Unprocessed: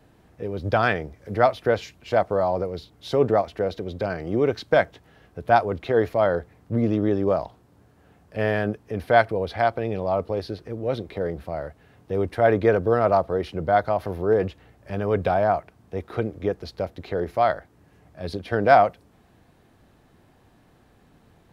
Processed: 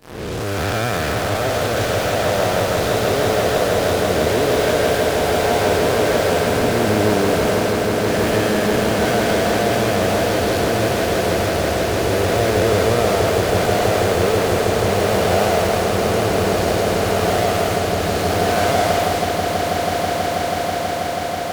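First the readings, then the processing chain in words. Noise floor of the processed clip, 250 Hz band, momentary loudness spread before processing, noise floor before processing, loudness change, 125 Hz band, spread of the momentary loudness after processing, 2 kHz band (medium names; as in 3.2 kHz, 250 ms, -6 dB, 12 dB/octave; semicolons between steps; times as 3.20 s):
-22 dBFS, +7.5 dB, 13 LU, -58 dBFS, +6.0 dB, +8.5 dB, 4 LU, +8.0 dB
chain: spectral blur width 464 ms; in parallel at -11.5 dB: fuzz box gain 51 dB, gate -49 dBFS; on the sum: treble shelf 2.8 kHz +7 dB; echo with a slow build-up 162 ms, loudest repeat 8, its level -10 dB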